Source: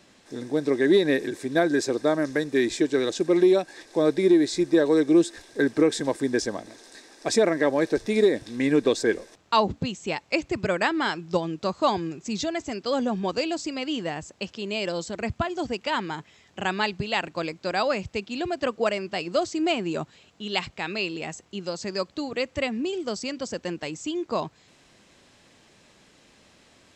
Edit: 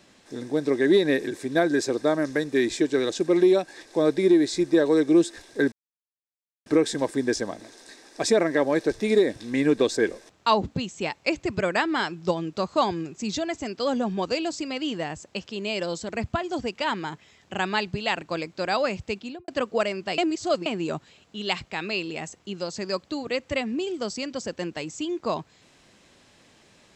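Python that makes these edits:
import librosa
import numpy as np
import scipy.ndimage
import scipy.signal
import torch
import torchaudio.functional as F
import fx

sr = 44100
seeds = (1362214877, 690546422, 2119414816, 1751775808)

y = fx.studio_fade_out(x, sr, start_s=18.23, length_s=0.31)
y = fx.edit(y, sr, fx.insert_silence(at_s=5.72, length_s=0.94),
    fx.reverse_span(start_s=19.24, length_s=0.48), tone=tone)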